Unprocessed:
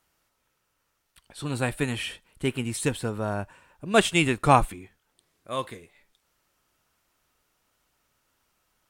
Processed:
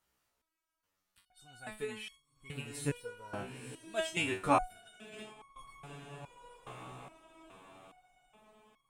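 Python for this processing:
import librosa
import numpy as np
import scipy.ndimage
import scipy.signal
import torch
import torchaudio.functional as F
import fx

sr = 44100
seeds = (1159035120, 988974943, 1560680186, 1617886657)

y = fx.echo_diffused(x, sr, ms=996, feedback_pct=50, wet_db=-11.0)
y = fx.over_compress(y, sr, threshold_db=-36.0, ratio=-0.5, at=(4.7, 5.56))
y = fx.resonator_held(y, sr, hz=2.4, low_hz=63.0, high_hz=1100.0)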